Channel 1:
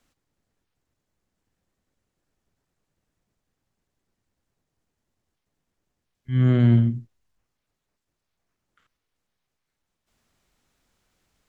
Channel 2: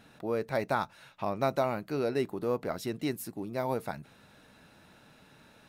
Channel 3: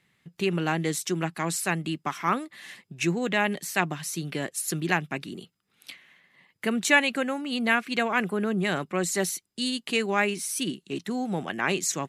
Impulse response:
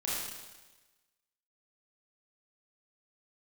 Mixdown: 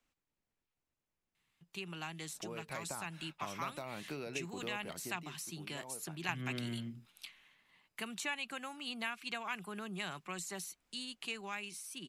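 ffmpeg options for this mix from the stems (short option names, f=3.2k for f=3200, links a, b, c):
-filter_complex "[0:a]volume=-12.5dB,asplit=2[a][b];[1:a]agate=range=-9dB:threshold=-55dB:ratio=16:detection=peak,acompressor=threshold=-31dB:ratio=6,adelay=2200,volume=-7dB,afade=t=out:st=4.58:d=0.74:silence=0.237137[c];[2:a]equalizer=f=125:t=o:w=1:g=-5,equalizer=f=250:t=o:w=1:g=-10,equalizer=f=500:t=o:w=1:g=-11,equalizer=f=2k:t=o:w=1:g=-9,adelay=1350,volume=0dB[d];[b]apad=whole_len=592451[e];[d][e]sidechaingate=range=-9dB:threshold=-56dB:ratio=16:detection=peak[f];[a][c][f]amix=inputs=3:normalize=0,acrossover=split=180|1900[g][h][i];[g]acompressor=threshold=-52dB:ratio=4[j];[h]acompressor=threshold=-47dB:ratio=4[k];[i]acompressor=threshold=-48dB:ratio=4[l];[j][k][l]amix=inputs=3:normalize=0,equalizer=f=100:t=o:w=0.67:g=-4,equalizer=f=1k:t=o:w=0.67:g=3,equalizer=f=2.5k:t=o:w=0.67:g=6,dynaudnorm=f=290:g=17:m=4dB"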